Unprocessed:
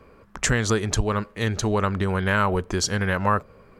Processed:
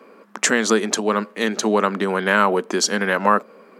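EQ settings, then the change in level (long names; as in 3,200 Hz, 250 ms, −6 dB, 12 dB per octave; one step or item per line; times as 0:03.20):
elliptic high-pass filter 210 Hz, stop band 60 dB
+6.0 dB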